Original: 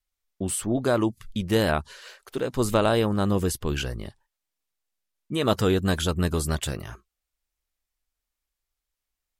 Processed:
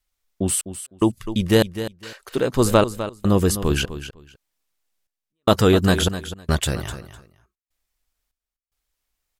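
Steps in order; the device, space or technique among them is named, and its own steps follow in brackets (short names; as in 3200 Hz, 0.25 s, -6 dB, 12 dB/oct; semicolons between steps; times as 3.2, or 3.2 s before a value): trance gate with a delay (step gate "xxx..xxx..x" 74 bpm -60 dB; feedback echo 0.253 s, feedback 18%, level -12 dB); gain +6.5 dB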